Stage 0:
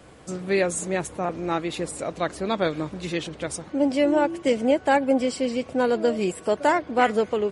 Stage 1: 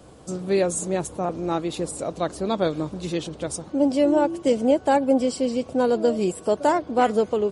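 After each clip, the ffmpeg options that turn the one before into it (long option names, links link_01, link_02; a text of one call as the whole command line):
ffmpeg -i in.wav -af "equalizer=frequency=2000:width_type=o:width=1.1:gain=-10.5,volume=2dB" out.wav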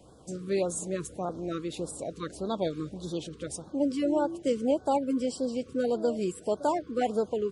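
ffmpeg -i in.wav -af "afftfilt=real='re*(1-between(b*sr/1024,700*pow(2400/700,0.5+0.5*sin(2*PI*1.7*pts/sr))/1.41,700*pow(2400/700,0.5+0.5*sin(2*PI*1.7*pts/sr))*1.41))':imag='im*(1-between(b*sr/1024,700*pow(2400/700,0.5+0.5*sin(2*PI*1.7*pts/sr))/1.41,700*pow(2400/700,0.5+0.5*sin(2*PI*1.7*pts/sr))*1.41))':win_size=1024:overlap=0.75,volume=-7dB" out.wav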